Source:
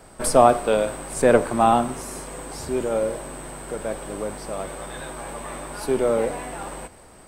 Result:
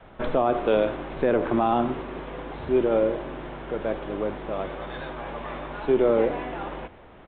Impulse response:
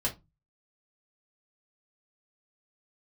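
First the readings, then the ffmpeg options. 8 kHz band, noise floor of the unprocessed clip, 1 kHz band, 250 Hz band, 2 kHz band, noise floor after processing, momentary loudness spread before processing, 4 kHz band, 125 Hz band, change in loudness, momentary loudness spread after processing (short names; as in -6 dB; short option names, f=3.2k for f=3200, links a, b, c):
under -40 dB, -48 dBFS, -6.0 dB, 0.0 dB, -3.0 dB, -48 dBFS, 17 LU, -5.0 dB, -2.5 dB, -3.5 dB, 14 LU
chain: -af "adynamicequalizer=threshold=0.0141:dfrequency=340:dqfactor=2.8:tfrequency=340:tqfactor=2.8:attack=5:release=100:ratio=0.375:range=3.5:mode=boostabove:tftype=bell,alimiter=limit=-11.5dB:level=0:latency=1:release=80,aresample=8000,aresample=44100"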